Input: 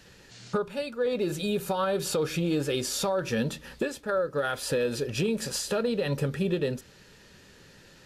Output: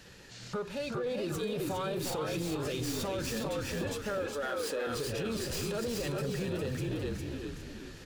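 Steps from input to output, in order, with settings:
stylus tracing distortion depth 0.054 ms
on a send: echo with shifted repeats 406 ms, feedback 34%, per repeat −49 Hz, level −4 dB
on the sum: brickwall limiter −25 dBFS, peak gain reduction 10.5 dB
in parallel at −5 dB: hard clipping −40 dBFS, distortion −6 dB
0:04.18–0:04.87: on the sum: high-pass filter 260 Hz 24 dB per octave
feedback echo with a swinging delay time 367 ms, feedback 32%, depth 201 cents, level −8 dB
level −3.5 dB

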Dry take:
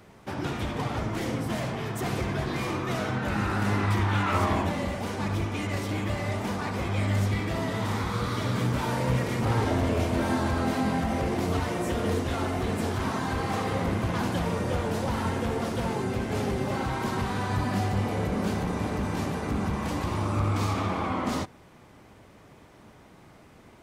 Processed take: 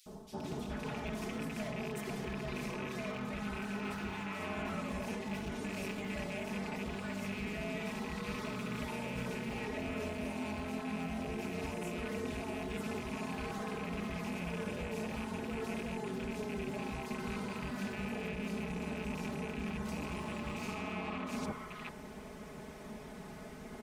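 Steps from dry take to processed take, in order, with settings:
loose part that buzzes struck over −28 dBFS, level −20 dBFS
comb filter 4.7 ms, depth 99%
reversed playback
downward compressor 12 to 1, threshold −38 dBFS, peak gain reduction 20 dB
reversed playback
three-band delay without the direct sound highs, lows, mids 60/430 ms, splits 1,100/3,400 Hz
level +2.5 dB

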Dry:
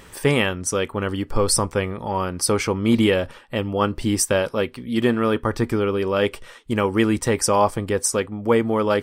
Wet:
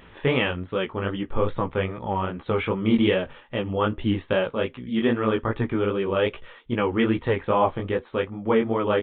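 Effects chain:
chorus effect 2.5 Hz, delay 15.5 ms, depth 6.8 ms
downsampling to 8,000 Hz

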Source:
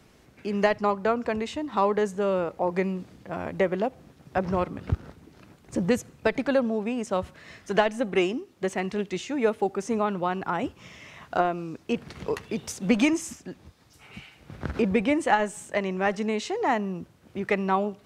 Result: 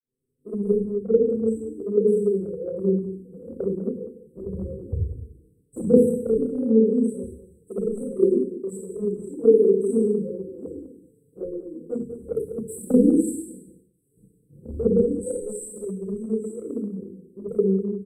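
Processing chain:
octave-band graphic EQ 500/1,000/4,000 Hz +7/−5/+7 dB
four-comb reverb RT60 0.8 s, combs from 28 ms, DRR −6 dB
downward expander −40 dBFS
linear-phase brick-wall band-stop 520–7,700 Hz
0:13.33–0:15.49: dynamic equaliser 280 Hz, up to −6 dB, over −29 dBFS, Q 1.9
flanger swept by the level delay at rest 7.7 ms, full sweep at −11 dBFS
mains-hum notches 60/120/180/240/300/360/420 Hz
slap from a distant wall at 34 metres, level −12 dB
multiband upward and downward expander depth 40%
level −2.5 dB

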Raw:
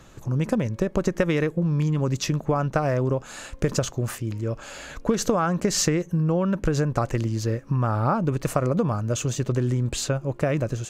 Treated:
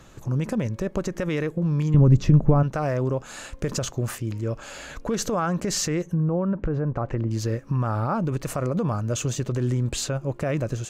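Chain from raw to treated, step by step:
brickwall limiter −16 dBFS, peak gain reduction 9.5 dB
0:01.94–0:02.63: spectral tilt −4 dB per octave
0:06.03–0:07.31: treble cut that deepens with the level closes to 1,200 Hz, closed at −21.5 dBFS

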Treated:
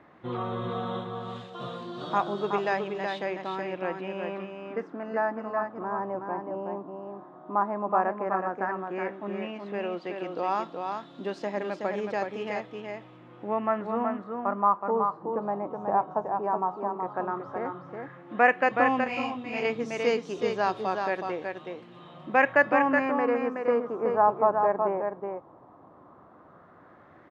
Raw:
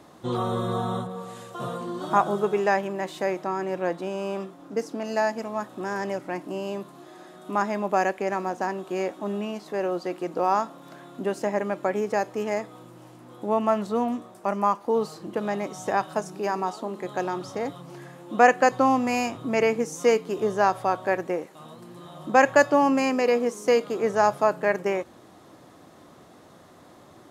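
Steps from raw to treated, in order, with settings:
auto-filter low-pass sine 0.11 Hz 940–4,000 Hz
single-tap delay 372 ms −5 dB
0:19.04–0:19.65: micro pitch shift up and down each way 40 cents
level −6 dB

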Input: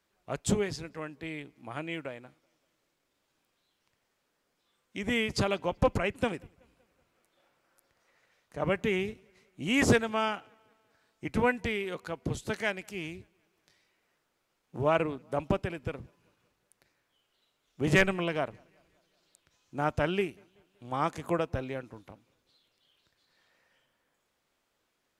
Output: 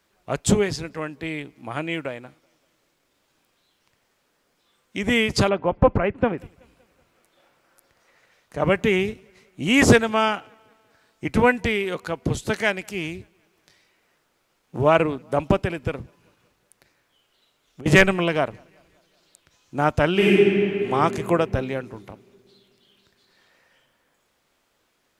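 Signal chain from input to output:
0:05.49–0:06.38: low-pass filter 1,600 Hz 12 dB per octave
0:16.02–0:17.86: downward compressor 10 to 1, threshold −48 dBFS, peak gain reduction 22.5 dB
0:20.12–0:20.89: thrown reverb, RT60 2.9 s, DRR −7.5 dB
level +9 dB

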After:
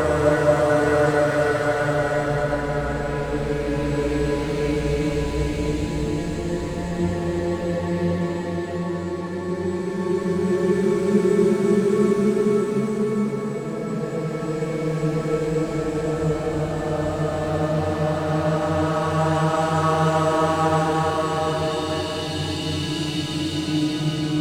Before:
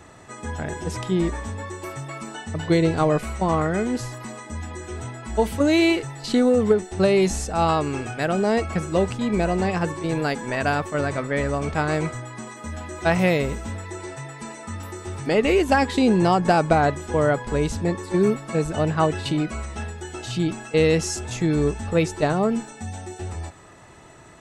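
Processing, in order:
adaptive Wiener filter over 15 samples
high-shelf EQ 2,100 Hz +9.5 dB
extreme stretch with random phases 11×, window 0.50 s, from 0:17.18

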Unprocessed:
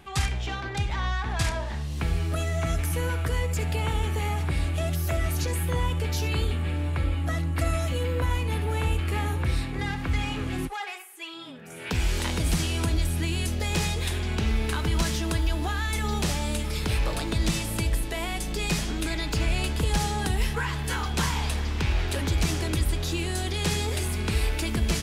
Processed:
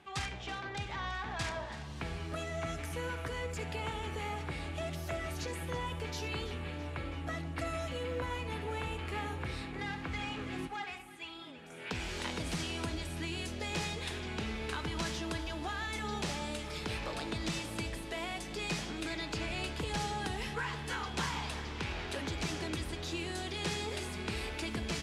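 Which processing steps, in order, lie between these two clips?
high-pass filter 230 Hz 6 dB per octave
high-frequency loss of the air 55 metres
delay that swaps between a low-pass and a high-pass 165 ms, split 950 Hz, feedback 77%, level −13 dB
level −6 dB

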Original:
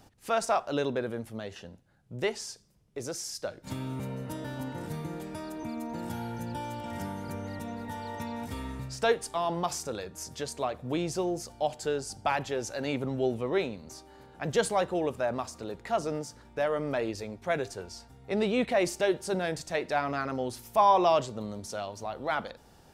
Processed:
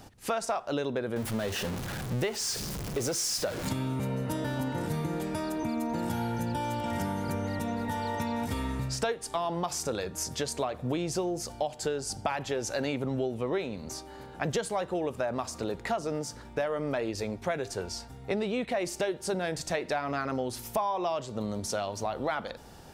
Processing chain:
0:01.16–0:03.69: converter with a step at zero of −37 dBFS
downward compressor 10 to 1, threshold −34 dBFS, peak gain reduction 17 dB
level +7 dB

